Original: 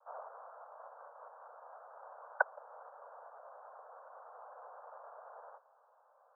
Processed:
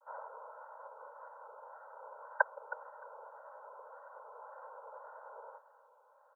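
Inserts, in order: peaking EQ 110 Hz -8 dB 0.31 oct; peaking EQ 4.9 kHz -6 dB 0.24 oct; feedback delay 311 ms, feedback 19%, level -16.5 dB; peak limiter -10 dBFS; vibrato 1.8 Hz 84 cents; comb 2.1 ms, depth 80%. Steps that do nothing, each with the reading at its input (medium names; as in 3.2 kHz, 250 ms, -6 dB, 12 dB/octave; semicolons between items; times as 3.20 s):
peaking EQ 110 Hz: input has nothing below 430 Hz; peaking EQ 4.9 kHz: input has nothing above 1.8 kHz; peak limiter -10 dBFS: peak at its input -13.0 dBFS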